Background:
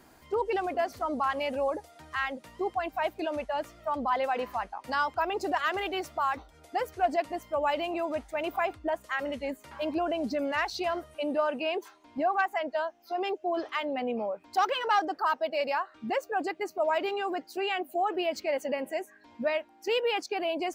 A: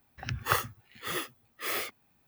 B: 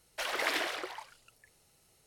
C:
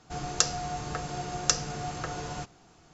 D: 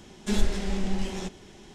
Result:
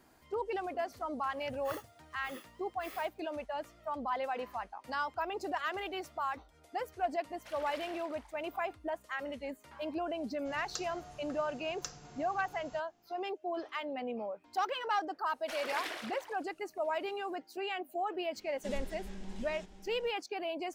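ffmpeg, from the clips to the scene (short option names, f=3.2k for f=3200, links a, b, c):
-filter_complex "[2:a]asplit=2[a][b];[0:a]volume=-7dB[c];[4:a]aecho=1:1:649:0.266[d];[1:a]atrim=end=2.27,asetpts=PTS-STARTPTS,volume=-17.5dB,afade=t=in:d=0.004:c=hsin,afade=t=out:st=2.266:d=0.004:c=hsin,adelay=1190[e];[a]atrim=end=2.06,asetpts=PTS-STARTPTS,volume=-16.5dB,afade=t=in:d=0.004:c=hsin,afade=t=out:st=2.056:d=0.004:c=hsin,adelay=7270[f];[3:a]atrim=end=2.93,asetpts=PTS-STARTPTS,volume=-17.5dB,afade=t=in:d=0.004:c=hsin,afade=t=out:st=2.926:d=0.004:c=hsin,adelay=10350[g];[b]atrim=end=2.06,asetpts=PTS-STARTPTS,volume=-7.5dB,afade=t=in:d=0.004:c=hsin,afade=t=out:st=2.056:d=0.004:c=hsin,adelay=15300[h];[d]atrim=end=1.74,asetpts=PTS-STARTPTS,volume=-16.5dB,afade=t=in:d=0.004:c=hsin,afade=t=out:st=1.736:d=0.004:c=hsin,adelay=18370[i];[c][e][f][g][h][i]amix=inputs=6:normalize=0"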